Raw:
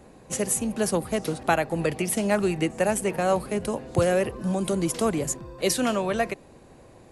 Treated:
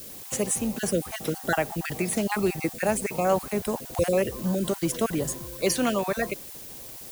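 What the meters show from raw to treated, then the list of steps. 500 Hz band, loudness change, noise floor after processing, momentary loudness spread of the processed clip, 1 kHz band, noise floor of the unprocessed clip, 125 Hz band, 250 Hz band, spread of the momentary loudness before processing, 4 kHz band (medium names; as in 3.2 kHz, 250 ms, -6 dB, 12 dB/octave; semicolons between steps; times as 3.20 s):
-1.5 dB, -1.5 dB, -42 dBFS, 7 LU, -2.0 dB, -51 dBFS, -2.0 dB, -1.5 dB, 6 LU, -1.0 dB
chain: random holes in the spectrogram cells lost 23%; added noise blue -42 dBFS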